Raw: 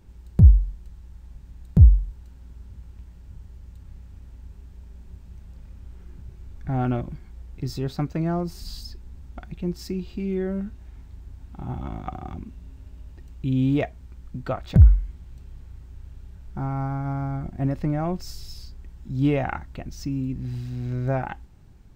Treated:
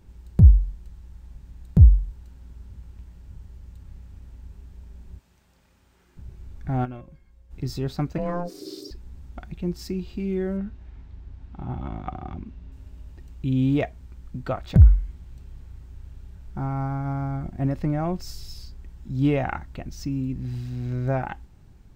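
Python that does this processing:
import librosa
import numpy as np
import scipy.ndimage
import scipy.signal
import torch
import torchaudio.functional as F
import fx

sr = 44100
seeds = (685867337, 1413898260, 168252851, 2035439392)

y = fx.highpass(x, sr, hz=750.0, slope=6, at=(5.19, 6.17))
y = fx.comb_fb(y, sr, f0_hz=540.0, decay_s=0.24, harmonics='all', damping=0.0, mix_pct=80, at=(6.84, 7.5), fade=0.02)
y = fx.ring_mod(y, sr, carrier_hz=350.0, at=(8.18, 8.91))
y = fx.lowpass(y, sr, hz=4300.0, slope=12, at=(10.57, 12.72))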